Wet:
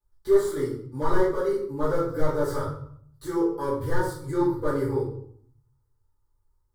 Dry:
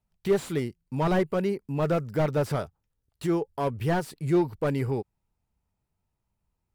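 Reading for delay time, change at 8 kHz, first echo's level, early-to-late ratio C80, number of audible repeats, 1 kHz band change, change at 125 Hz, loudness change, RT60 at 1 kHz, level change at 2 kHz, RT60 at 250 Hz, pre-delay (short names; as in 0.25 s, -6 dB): none, +1.0 dB, none, 8.0 dB, none, +1.0 dB, -4.0 dB, +1.0 dB, 0.65 s, 0.0 dB, 0.90 s, 5 ms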